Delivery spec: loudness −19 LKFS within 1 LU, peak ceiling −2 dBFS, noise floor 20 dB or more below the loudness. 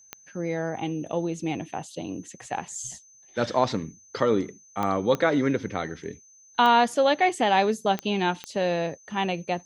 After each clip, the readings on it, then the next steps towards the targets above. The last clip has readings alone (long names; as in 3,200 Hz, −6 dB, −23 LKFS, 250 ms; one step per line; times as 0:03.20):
number of clicks 6; interfering tone 6,200 Hz; level of the tone −52 dBFS; integrated loudness −26.0 LKFS; sample peak −7.5 dBFS; target loudness −19.0 LKFS
→ click removal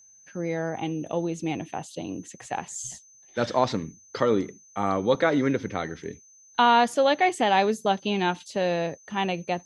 number of clicks 0; interfering tone 6,200 Hz; level of the tone −52 dBFS
→ notch filter 6,200 Hz, Q 30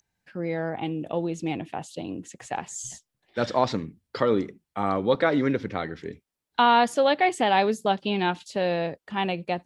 interfering tone none found; integrated loudness −26.0 LKFS; sample peak −7.5 dBFS; target loudness −19.0 LKFS
→ level +7 dB
brickwall limiter −2 dBFS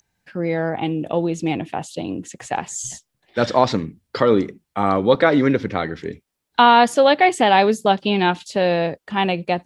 integrated loudness −19.0 LKFS; sample peak −2.0 dBFS; background noise floor −77 dBFS